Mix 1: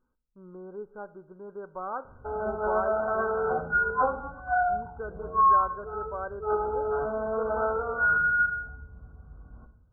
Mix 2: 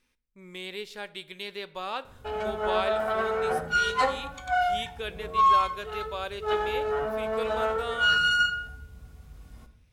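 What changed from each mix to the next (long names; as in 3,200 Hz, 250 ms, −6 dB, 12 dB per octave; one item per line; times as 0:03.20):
master: remove linear-phase brick-wall low-pass 1,600 Hz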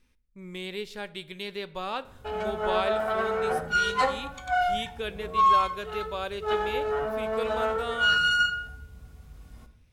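speech: add low-shelf EQ 230 Hz +11.5 dB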